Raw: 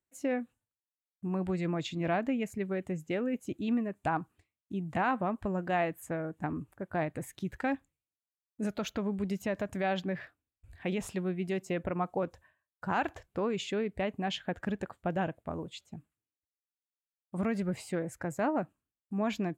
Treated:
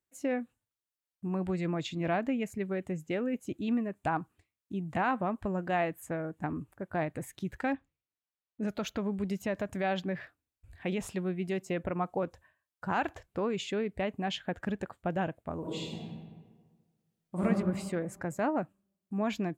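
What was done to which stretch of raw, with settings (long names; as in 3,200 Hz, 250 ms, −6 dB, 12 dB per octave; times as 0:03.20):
0:07.73–0:08.68: low-pass filter 3,800 Hz
0:15.59–0:17.44: thrown reverb, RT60 1.5 s, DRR −6 dB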